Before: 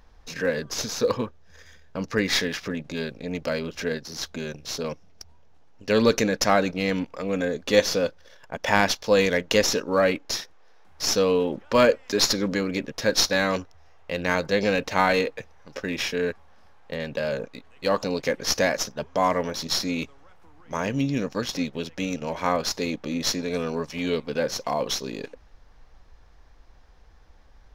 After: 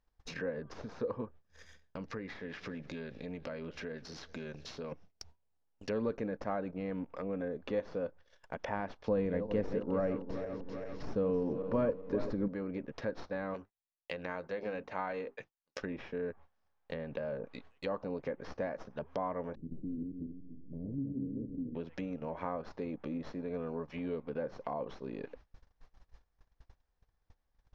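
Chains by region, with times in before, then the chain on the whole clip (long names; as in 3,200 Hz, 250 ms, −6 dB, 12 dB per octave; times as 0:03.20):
0:01.25–0:04.92: downward compressor 2 to 1, threshold −36 dBFS + feedback echo with a swinging delay time 194 ms, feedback 58%, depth 98 cents, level −22 dB
0:09.08–0:12.48: feedback delay that plays each chunk backwards 196 ms, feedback 65%, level −10.5 dB + low-shelf EQ 390 Hz +11.5 dB
0:13.54–0:15.82: mains-hum notches 50/100/150/200/250/300/350/400 Hz + downward expander −37 dBFS + spectral tilt +2 dB per octave
0:19.55–0:21.75: feedback delay that plays each chunk backwards 143 ms, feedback 44%, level −2 dB + inverse Chebyshev low-pass filter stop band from 1,100 Hz, stop band 60 dB + dynamic equaliser 170 Hz, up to −5 dB, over −36 dBFS, Q 1.2
whole clip: downward compressor 2 to 1, threshold −34 dBFS; noise gate −47 dBFS, range −22 dB; treble cut that deepens with the level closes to 1,200 Hz, closed at −31 dBFS; level −4.5 dB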